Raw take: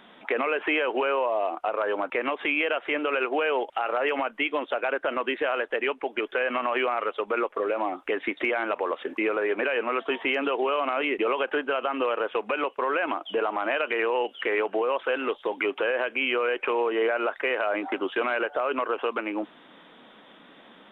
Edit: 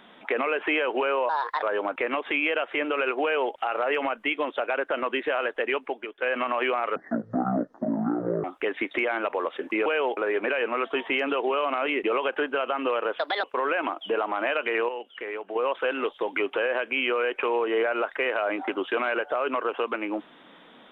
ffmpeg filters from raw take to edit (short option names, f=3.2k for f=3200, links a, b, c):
-filter_complex "[0:a]asplit=12[a][b][c][d][e][f][g][h][i][j][k][l];[a]atrim=end=1.294[m];[b]atrim=start=1.29:end=1.77,asetpts=PTS-STARTPTS,asetrate=62622,aresample=44100,atrim=end_sample=14907,asetpts=PTS-STARTPTS[n];[c]atrim=start=1.766:end=6.36,asetpts=PTS-STARTPTS,afade=t=out:st=4.264:d=0.33:c=qua:silence=0.223872[o];[d]atrim=start=6.36:end=7.104,asetpts=PTS-STARTPTS,afade=t=in:d=0.004:c=hsin:silence=0.223872[p];[e]atrim=start=7.1:end=7.9,asetpts=PTS-STARTPTS,asetrate=23814,aresample=44100,atrim=end_sample=65333,asetpts=PTS-STARTPTS[q];[f]atrim=start=7.896:end=9.322[r];[g]atrim=start=3.368:end=3.682[s];[h]atrim=start=9.318:end=12.344[t];[i]atrim=start=12.34:end=12.68,asetpts=PTS-STARTPTS,asetrate=60858,aresample=44100,atrim=end_sample=10865,asetpts=PTS-STARTPTS[u];[j]atrim=start=12.676:end=14.132[v];[k]atrim=start=14.128:end=14.802,asetpts=PTS-STARTPTS,volume=-8.5dB[w];[l]atrim=start=14.798[x];[m][n]acrossfade=d=0.004:c1=hsin:c2=hsin[y];[o][p]concat=n=2:v=0:a=1[z];[y][z]acrossfade=d=0.004:c1=hsin:c2=hsin[aa];[aa][q]acrossfade=d=0.004:c1=hsin:c2=hsin[ab];[ab][r]acrossfade=d=0.004:c1=hsin:c2=hsin[ac];[ac][s]acrossfade=d=0.004:c1=hsin:c2=hsin[ad];[ad][t]acrossfade=d=0.004:c1=hsin:c2=hsin[ae];[ae][u]acrossfade=d=0.004:c1=hsin:c2=hsin[af];[af][v]acrossfade=d=0.004:c1=hsin:c2=hsin[ag];[ag][w]acrossfade=d=0.004:c1=hsin:c2=hsin[ah];[ah][x]acrossfade=d=0.004:c1=hsin:c2=hsin"